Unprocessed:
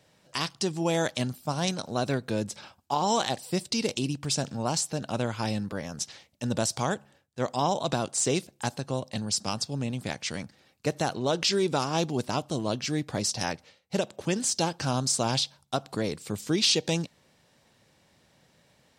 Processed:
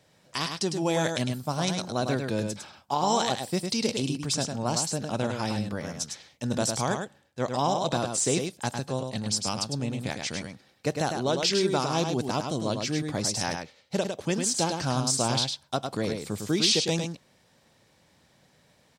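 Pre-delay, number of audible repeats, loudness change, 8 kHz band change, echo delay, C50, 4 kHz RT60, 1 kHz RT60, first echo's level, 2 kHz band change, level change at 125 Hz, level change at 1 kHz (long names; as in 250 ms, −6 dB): no reverb audible, 1, +1.0 dB, +1.0 dB, 104 ms, no reverb audible, no reverb audible, no reverb audible, −5.5 dB, +1.0 dB, +1.0 dB, +1.0 dB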